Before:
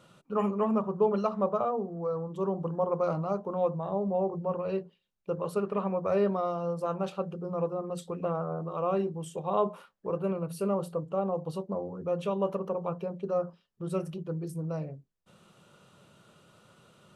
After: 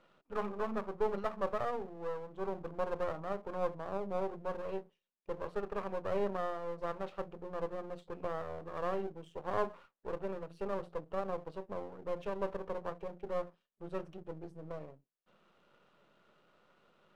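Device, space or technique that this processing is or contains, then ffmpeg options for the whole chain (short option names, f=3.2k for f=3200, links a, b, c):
crystal radio: -af "highpass=260,lowpass=2.8k,aeval=exprs='if(lt(val(0),0),0.251*val(0),val(0))':c=same,volume=-3.5dB"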